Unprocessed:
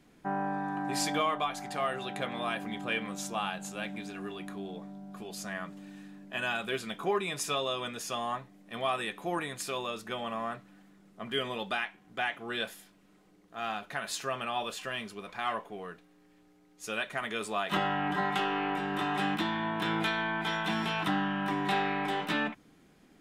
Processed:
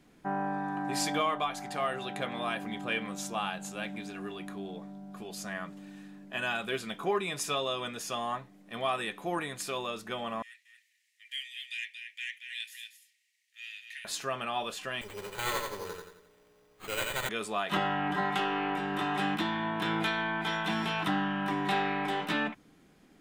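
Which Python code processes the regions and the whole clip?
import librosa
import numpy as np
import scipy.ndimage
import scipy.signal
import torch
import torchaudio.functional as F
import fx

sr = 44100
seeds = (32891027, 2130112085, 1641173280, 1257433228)

y = fx.chain(x, sr, fx.cheby_ripple_highpass(hz=1800.0, ripple_db=3),
    fx.echo_single(ms=230, db=-7.0),
    fx.transformer_sat(knee_hz=2000.0), at=(10.42, 14.05))
y = fx.chain(y, sr, fx.lower_of_two(delay_ms=2.1),
    fx.echo_feedback(ms=88, feedback_pct=45, wet_db=-3.0),
    fx.sample_hold(seeds[0], rate_hz=5400.0, jitter_pct=0), at=(15.01, 17.29))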